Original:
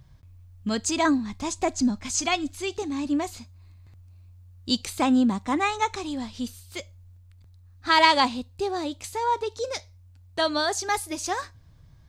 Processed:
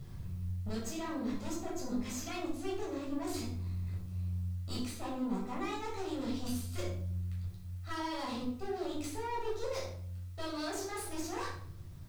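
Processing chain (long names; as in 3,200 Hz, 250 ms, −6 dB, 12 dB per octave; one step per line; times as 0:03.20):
parametric band 360 Hz +10 dB 0.23 octaves
reversed playback
downward compressor 10 to 1, threshold −33 dBFS, peak gain reduction 21 dB
reversed playback
brickwall limiter −28.5 dBFS, peak gain reduction 7.5 dB
speech leveller within 5 dB 0.5 s
tube saturation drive 39 dB, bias 0.75
bit-depth reduction 12 bits, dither triangular
rectangular room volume 910 cubic metres, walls furnished, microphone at 6.6 metres
level −3.5 dB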